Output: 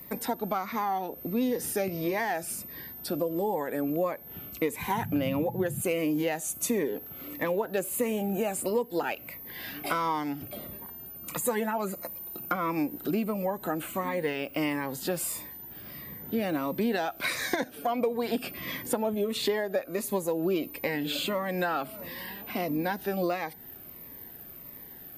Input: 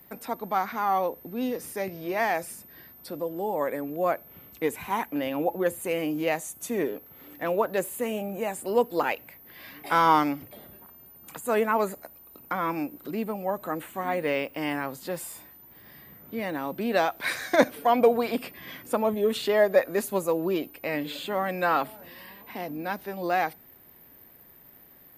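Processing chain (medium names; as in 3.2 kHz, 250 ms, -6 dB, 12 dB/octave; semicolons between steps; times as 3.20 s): 4.94–5.80 s: band noise 97–200 Hz -38 dBFS; 11.35–12.56 s: comb 5.7 ms, depth 58%; compression 8:1, threshold -31 dBFS, peak gain reduction 18 dB; Shepard-style phaser falling 1.5 Hz; trim +7.5 dB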